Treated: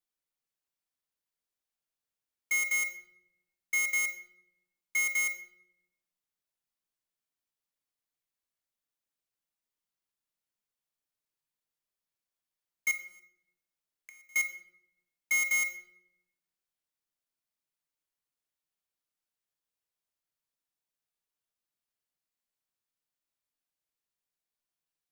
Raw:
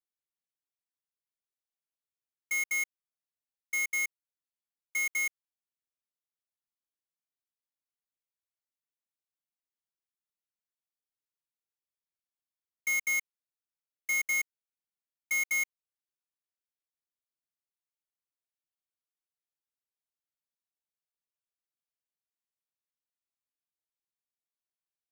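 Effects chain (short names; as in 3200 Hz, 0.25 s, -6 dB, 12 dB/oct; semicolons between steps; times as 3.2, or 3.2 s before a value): 12.91–14.36 flipped gate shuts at -42 dBFS, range -29 dB; shoebox room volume 220 m³, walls mixed, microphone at 0.49 m; gain +2 dB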